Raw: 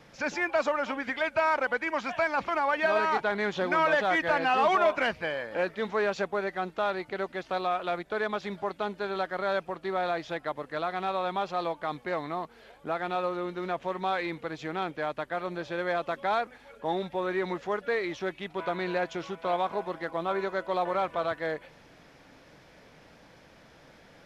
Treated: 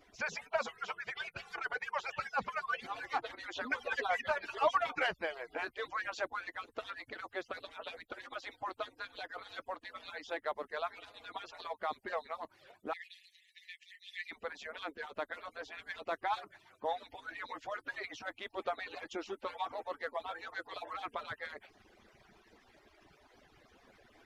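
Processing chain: median-filter separation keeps percussive; 12.93–14.31 brick-wall FIR high-pass 1700 Hz; gain -3.5 dB

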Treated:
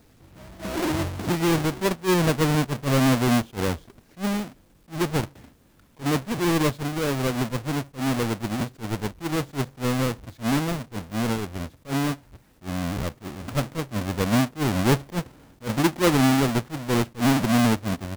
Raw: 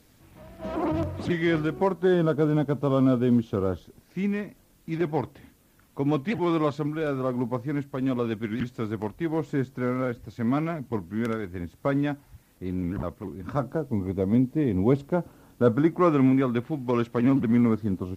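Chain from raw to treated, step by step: half-waves squared off; attack slew limiter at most 300 dB/s; gain -2.5 dB

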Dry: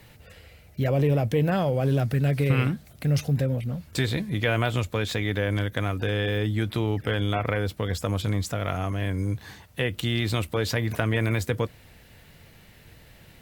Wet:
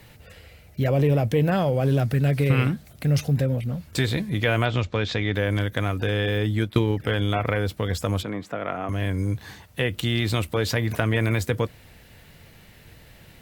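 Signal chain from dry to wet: 4.65–5.35 LPF 5700 Hz 24 dB/oct; 6.59–7 transient shaper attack +8 dB, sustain -10 dB; 8.23–8.89 three-band isolator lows -22 dB, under 180 Hz, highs -19 dB, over 2600 Hz; gain +2 dB

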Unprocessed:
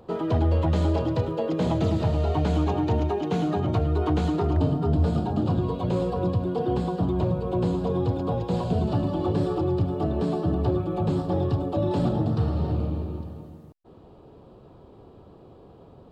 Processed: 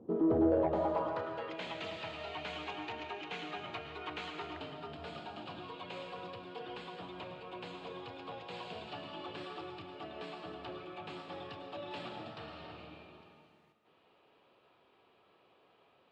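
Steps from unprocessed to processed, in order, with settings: band-pass sweep 270 Hz -> 2400 Hz, 0.09–1.58; soft clip -24 dBFS, distortion -20 dB; digital reverb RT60 0.99 s, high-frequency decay 0.95×, pre-delay 85 ms, DRR 6.5 dB; gain +2.5 dB

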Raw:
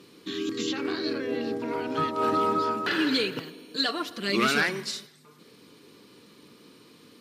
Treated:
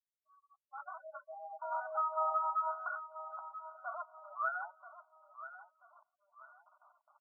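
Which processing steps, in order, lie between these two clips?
opening faded in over 1.24 s; gate with hold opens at -42 dBFS; reverb removal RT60 1.9 s; limiter -22.5 dBFS, peak gain reduction 10 dB; 3.36–4.37 tube stage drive 32 dB, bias 0.6; companded quantiser 4-bit; spectral gate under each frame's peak -20 dB strong; brick-wall FIR band-pass 590–1500 Hz; 1.88–2.5 doubler 35 ms -8.5 dB; feedback echo 0.984 s, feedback 34%, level -13 dB; on a send at -24 dB: reverb RT60 0.15 s, pre-delay 3 ms

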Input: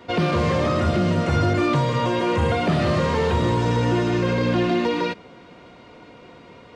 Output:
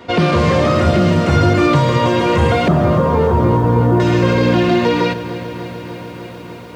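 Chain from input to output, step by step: 2.68–4 LPF 1300 Hz 24 dB/oct; lo-fi delay 0.297 s, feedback 80%, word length 8-bit, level -14.5 dB; gain +7 dB

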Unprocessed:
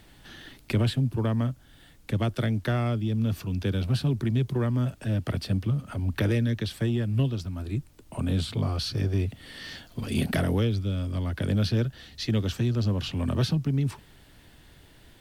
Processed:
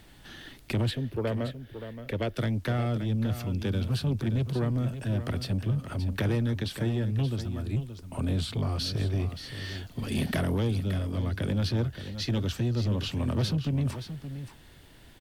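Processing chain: 0.91–2.37 ten-band EQ 125 Hz -7 dB, 250 Hz -4 dB, 500 Hz +9 dB, 1000 Hz -8 dB, 2000 Hz +5 dB, 8000 Hz -10 dB; soft clip -21.5 dBFS, distortion -16 dB; echo 0.574 s -10.5 dB

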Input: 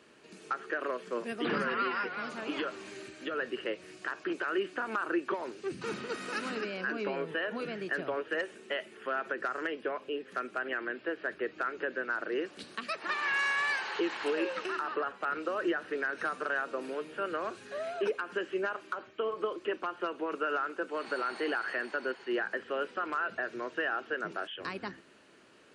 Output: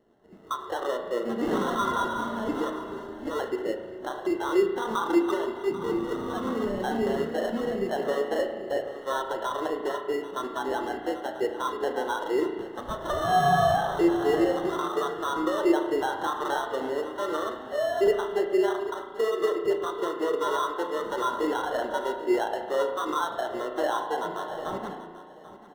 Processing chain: vibrato 7.3 Hz 8.8 cents; in parallel at +1 dB: limiter -32.5 dBFS, peak gain reduction 10.5 dB; on the sum: sample-rate reducer 2400 Hz, jitter 0%; on a send: feedback echo 0.788 s, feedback 36%, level -11 dB; on the sum: spring tank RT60 1.9 s, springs 35 ms, chirp 20 ms, DRR 2.5 dB; spectral expander 1.5:1; gain +3 dB

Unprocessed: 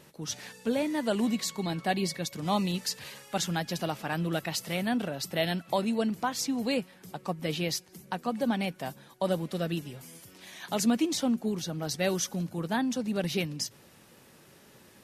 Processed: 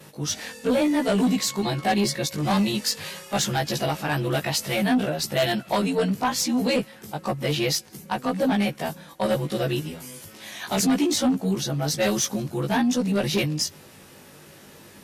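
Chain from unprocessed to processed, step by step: short-time reversal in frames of 40 ms; added harmonics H 5 -11 dB, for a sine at -16.5 dBFS; gain +4 dB

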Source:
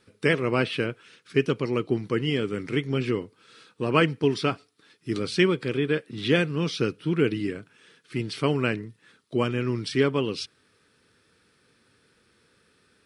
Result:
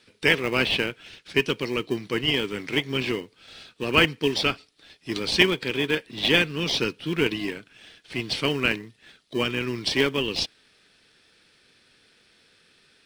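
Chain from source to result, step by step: weighting filter D; in parallel at -11 dB: sample-and-hold 32×; on the sum: gain -2.5 dB

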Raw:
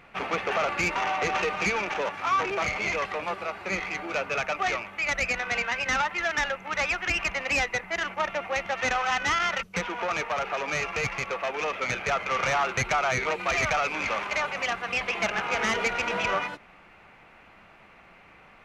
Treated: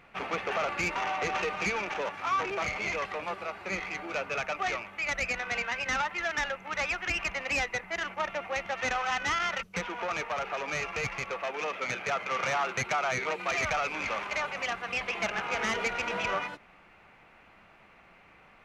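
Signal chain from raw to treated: 11.44–13.65 HPF 120 Hz 12 dB/oct; gain -4 dB

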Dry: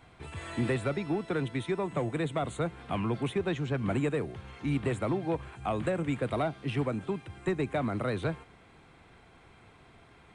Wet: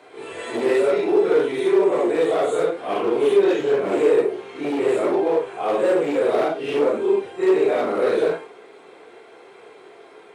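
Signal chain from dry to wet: phase scrambler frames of 0.2 s; hard clip -28.5 dBFS, distortion -11 dB; resonant high-pass 420 Hz, resonance Q 4; gain +8.5 dB

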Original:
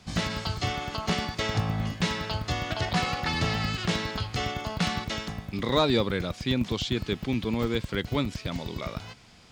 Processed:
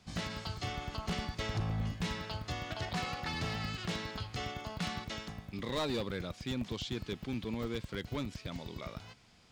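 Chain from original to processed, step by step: 0.72–2.21 low shelf 97 Hz +11 dB; hard clip -20.5 dBFS, distortion -14 dB; gain -9 dB

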